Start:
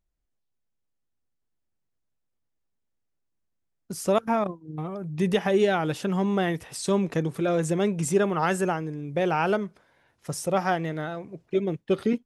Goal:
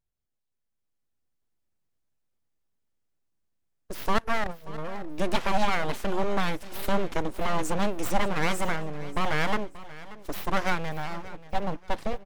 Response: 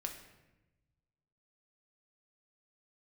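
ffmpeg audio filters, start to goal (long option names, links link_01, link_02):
-af "dynaudnorm=framelen=320:gausssize=5:maxgain=5.5dB,aeval=exprs='abs(val(0))':channel_layout=same,aecho=1:1:583|1166|1749:0.133|0.0413|0.0128,volume=-4.5dB"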